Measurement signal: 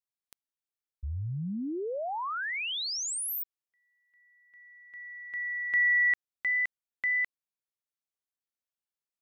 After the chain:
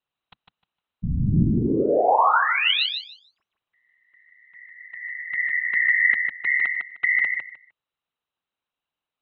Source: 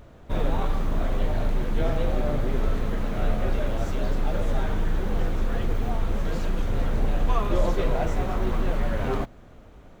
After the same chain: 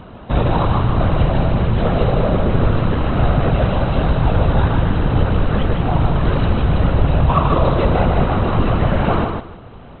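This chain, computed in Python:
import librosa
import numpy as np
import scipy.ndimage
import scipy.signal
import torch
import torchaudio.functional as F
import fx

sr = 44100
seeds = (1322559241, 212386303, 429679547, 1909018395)

p1 = fx.peak_eq(x, sr, hz=150.0, db=7.0, octaves=0.49)
p2 = fx.rider(p1, sr, range_db=10, speed_s=0.5)
p3 = p1 + (p2 * 10.0 ** (2.0 / 20.0))
p4 = 10.0 ** (-6.0 / 20.0) * np.tanh(p3 / 10.0 ** (-6.0 / 20.0))
p5 = scipy.signal.sosfilt(scipy.signal.cheby1(6, 6, 4000.0, 'lowpass', fs=sr, output='sos'), p4)
p6 = fx.whisperise(p5, sr, seeds[0])
p7 = p6 + fx.echo_feedback(p6, sr, ms=153, feedback_pct=19, wet_db=-5.0, dry=0)
y = p7 * 10.0 ** (6.5 / 20.0)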